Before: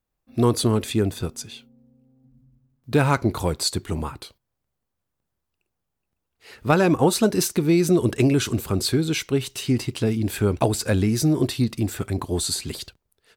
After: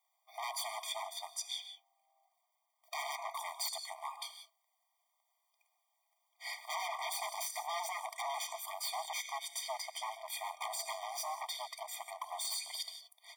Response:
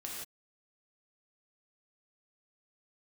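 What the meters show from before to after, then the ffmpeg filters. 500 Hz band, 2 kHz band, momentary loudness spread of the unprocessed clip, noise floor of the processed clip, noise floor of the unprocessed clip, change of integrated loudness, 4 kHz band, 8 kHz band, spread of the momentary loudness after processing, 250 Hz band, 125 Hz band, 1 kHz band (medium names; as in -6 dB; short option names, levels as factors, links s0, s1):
-24.0 dB, -12.5 dB, 13 LU, -81 dBFS, -80 dBFS, -17.5 dB, -10.0 dB, -11.5 dB, 7 LU, under -40 dB, under -40 dB, -9.0 dB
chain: -filter_complex "[0:a]asplit=2[s0][s1];[1:a]atrim=start_sample=2205[s2];[s1][s2]afir=irnorm=-1:irlink=0,volume=0.355[s3];[s0][s3]amix=inputs=2:normalize=0,aeval=exprs='0.0891*(abs(mod(val(0)/0.0891+3,4)-2)-1)':c=same,acompressor=threshold=0.01:ratio=10,afftfilt=real='re*eq(mod(floor(b*sr/1024/620),2),1)':imag='im*eq(mod(floor(b*sr/1024/620),2),1)':win_size=1024:overlap=0.75,volume=2.24"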